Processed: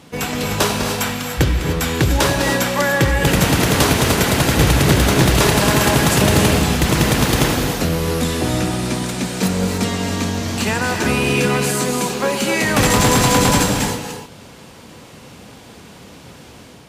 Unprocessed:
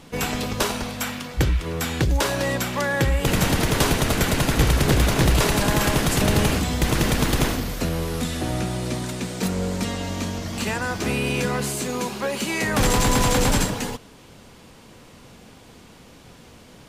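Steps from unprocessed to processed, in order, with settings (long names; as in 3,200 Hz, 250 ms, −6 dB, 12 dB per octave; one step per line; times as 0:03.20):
high-pass filter 62 Hz
reverb whose tail is shaped and stops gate 320 ms rising, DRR 4.5 dB
automatic gain control gain up to 4 dB
level +2 dB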